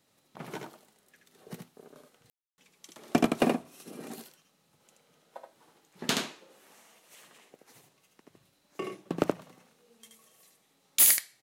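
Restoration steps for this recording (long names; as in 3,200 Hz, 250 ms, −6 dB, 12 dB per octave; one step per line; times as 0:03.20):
clipped peaks rebuilt −13 dBFS
ambience match 0:02.30–0:02.58
echo removal 76 ms −4.5 dB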